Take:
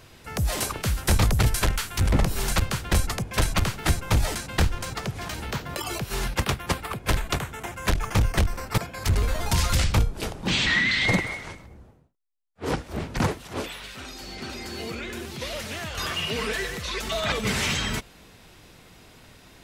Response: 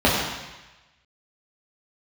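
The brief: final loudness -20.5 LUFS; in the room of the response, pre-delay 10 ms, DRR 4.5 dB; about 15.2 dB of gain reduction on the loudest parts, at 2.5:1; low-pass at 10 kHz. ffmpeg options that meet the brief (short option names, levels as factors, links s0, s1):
-filter_complex "[0:a]lowpass=10000,acompressor=threshold=0.00891:ratio=2.5,asplit=2[s0][s1];[1:a]atrim=start_sample=2205,adelay=10[s2];[s1][s2]afir=irnorm=-1:irlink=0,volume=0.0473[s3];[s0][s3]amix=inputs=2:normalize=0,volume=6.68"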